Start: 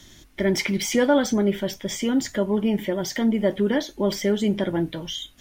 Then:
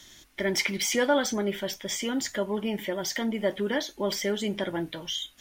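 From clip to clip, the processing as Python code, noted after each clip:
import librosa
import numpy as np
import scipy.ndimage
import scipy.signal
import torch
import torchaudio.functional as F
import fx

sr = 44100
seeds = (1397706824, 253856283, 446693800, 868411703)

y = fx.low_shelf(x, sr, hz=450.0, db=-11.0)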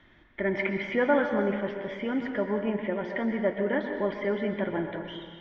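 y = scipy.signal.sosfilt(scipy.signal.butter(4, 2200.0, 'lowpass', fs=sr, output='sos'), x)
y = fx.rev_plate(y, sr, seeds[0], rt60_s=1.6, hf_ratio=0.8, predelay_ms=110, drr_db=5.0)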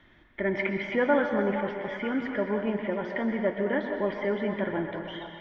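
y = fx.echo_stepped(x, sr, ms=469, hz=870.0, octaves=0.7, feedback_pct=70, wet_db=-7.0)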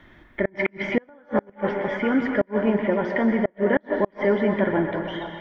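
y = fx.peak_eq(x, sr, hz=3300.0, db=-4.5, octaves=1.1)
y = fx.gate_flip(y, sr, shuts_db=-17.0, range_db=-35)
y = y * 10.0 ** (8.0 / 20.0)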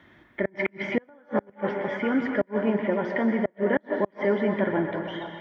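y = scipy.signal.sosfilt(scipy.signal.butter(2, 91.0, 'highpass', fs=sr, output='sos'), x)
y = y * 10.0 ** (-3.0 / 20.0)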